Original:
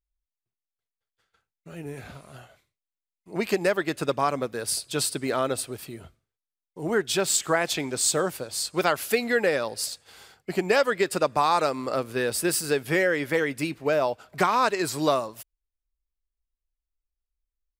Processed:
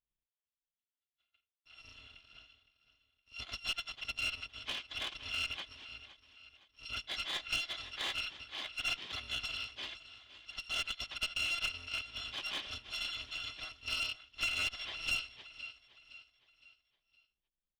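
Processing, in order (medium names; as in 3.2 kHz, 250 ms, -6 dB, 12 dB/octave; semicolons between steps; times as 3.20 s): bit-reversed sample order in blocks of 256 samples; four-pole ladder low-pass 3.6 kHz, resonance 65%; on a send: feedback delay 514 ms, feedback 41%, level -15 dB; on the sum: one-sided clip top -34.5 dBFS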